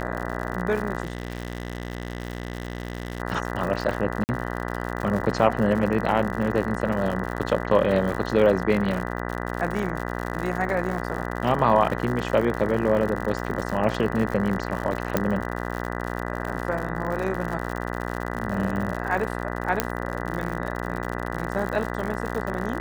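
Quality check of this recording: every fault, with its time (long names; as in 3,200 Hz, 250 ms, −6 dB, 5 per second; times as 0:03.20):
mains buzz 60 Hz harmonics 33 −30 dBFS
surface crackle 87 per second −29 dBFS
0:01.03–0:03.20: clipping −25 dBFS
0:04.24–0:04.29: drop-out 49 ms
0:15.17: click −7 dBFS
0:19.80: click −4 dBFS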